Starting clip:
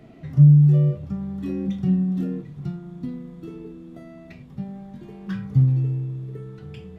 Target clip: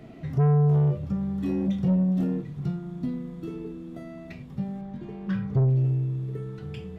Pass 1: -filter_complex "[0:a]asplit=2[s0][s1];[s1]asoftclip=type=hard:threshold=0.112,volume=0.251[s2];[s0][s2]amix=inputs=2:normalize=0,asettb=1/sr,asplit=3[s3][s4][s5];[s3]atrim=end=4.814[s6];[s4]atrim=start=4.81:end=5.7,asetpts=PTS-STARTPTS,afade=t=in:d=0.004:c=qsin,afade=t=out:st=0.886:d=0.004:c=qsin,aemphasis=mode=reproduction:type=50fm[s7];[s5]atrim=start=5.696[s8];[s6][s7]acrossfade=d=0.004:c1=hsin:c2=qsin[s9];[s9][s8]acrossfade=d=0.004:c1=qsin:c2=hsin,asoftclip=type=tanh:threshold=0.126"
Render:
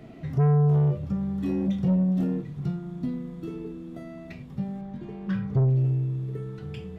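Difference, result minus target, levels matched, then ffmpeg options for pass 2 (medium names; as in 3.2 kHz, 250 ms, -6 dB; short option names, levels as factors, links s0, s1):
hard clipper: distortion +14 dB
-filter_complex "[0:a]asplit=2[s0][s1];[s1]asoftclip=type=hard:threshold=0.355,volume=0.251[s2];[s0][s2]amix=inputs=2:normalize=0,asettb=1/sr,asplit=3[s3][s4][s5];[s3]atrim=end=4.814[s6];[s4]atrim=start=4.81:end=5.7,asetpts=PTS-STARTPTS,afade=t=in:d=0.004:c=qsin,afade=t=out:st=0.886:d=0.004:c=qsin,aemphasis=mode=reproduction:type=50fm[s7];[s5]atrim=start=5.696[s8];[s6][s7]acrossfade=d=0.004:c1=hsin:c2=qsin[s9];[s9][s8]acrossfade=d=0.004:c1=qsin:c2=hsin,asoftclip=type=tanh:threshold=0.126"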